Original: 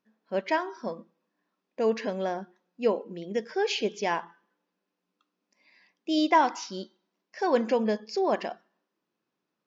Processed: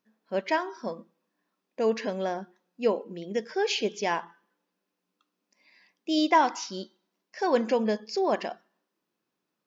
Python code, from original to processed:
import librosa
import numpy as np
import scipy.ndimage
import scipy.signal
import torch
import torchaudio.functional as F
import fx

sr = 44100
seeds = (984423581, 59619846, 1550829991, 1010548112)

y = fx.high_shelf(x, sr, hz=5000.0, db=4.5)